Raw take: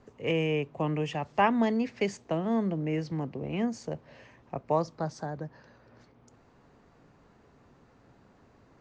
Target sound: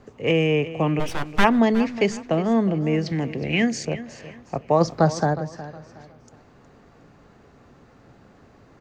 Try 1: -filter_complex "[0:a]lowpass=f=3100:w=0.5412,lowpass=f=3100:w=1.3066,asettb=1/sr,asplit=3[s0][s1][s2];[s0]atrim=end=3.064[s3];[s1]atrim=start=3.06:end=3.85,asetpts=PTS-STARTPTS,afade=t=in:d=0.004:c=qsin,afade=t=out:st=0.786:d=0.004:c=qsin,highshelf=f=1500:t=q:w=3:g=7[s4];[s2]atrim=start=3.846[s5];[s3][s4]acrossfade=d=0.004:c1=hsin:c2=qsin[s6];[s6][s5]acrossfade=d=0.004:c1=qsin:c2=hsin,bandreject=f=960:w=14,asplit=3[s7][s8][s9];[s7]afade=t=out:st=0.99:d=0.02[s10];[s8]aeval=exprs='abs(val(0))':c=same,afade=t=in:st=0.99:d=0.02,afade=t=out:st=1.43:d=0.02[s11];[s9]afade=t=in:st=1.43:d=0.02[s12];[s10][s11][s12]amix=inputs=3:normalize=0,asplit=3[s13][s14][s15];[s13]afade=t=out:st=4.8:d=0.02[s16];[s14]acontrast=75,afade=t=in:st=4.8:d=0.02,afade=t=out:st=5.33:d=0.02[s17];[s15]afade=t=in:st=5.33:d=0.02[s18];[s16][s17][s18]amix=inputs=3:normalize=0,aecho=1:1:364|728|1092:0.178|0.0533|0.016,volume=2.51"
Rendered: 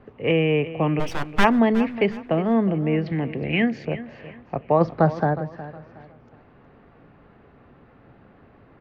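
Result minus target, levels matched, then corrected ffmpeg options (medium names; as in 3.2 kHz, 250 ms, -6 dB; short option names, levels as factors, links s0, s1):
4 kHz band -2.5 dB
-filter_complex "[0:a]asettb=1/sr,asplit=3[s0][s1][s2];[s0]atrim=end=3.064[s3];[s1]atrim=start=3.06:end=3.85,asetpts=PTS-STARTPTS,afade=t=in:d=0.004:c=qsin,afade=t=out:st=0.786:d=0.004:c=qsin,highshelf=f=1500:t=q:w=3:g=7[s4];[s2]atrim=start=3.846[s5];[s3][s4]acrossfade=d=0.004:c1=hsin:c2=qsin[s6];[s6][s5]acrossfade=d=0.004:c1=qsin:c2=hsin,bandreject=f=960:w=14,asplit=3[s7][s8][s9];[s7]afade=t=out:st=0.99:d=0.02[s10];[s8]aeval=exprs='abs(val(0))':c=same,afade=t=in:st=0.99:d=0.02,afade=t=out:st=1.43:d=0.02[s11];[s9]afade=t=in:st=1.43:d=0.02[s12];[s10][s11][s12]amix=inputs=3:normalize=0,asplit=3[s13][s14][s15];[s13]afade=t=out:st=4.8:d=0.02[s16];[s14]acontrast=75,afade=t=in:st=4.8:d=0.02,afade=t=out:st=5.33:d=0.02[s17];[s15]afade=t=in:st=5.33:d=0.02[s18];[s16][s17][s18]amix=inputs=3:normalize=0,aecho=1:1:364|728|1092:0.178|0.0533|0.016,volume=2.51"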